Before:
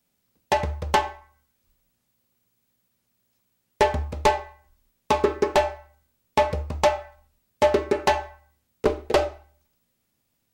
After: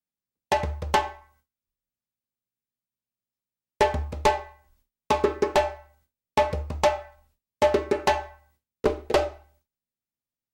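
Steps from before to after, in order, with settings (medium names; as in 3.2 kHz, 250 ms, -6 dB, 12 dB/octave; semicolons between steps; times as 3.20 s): gate with hold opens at -53 dBFS; trim -1.5 dB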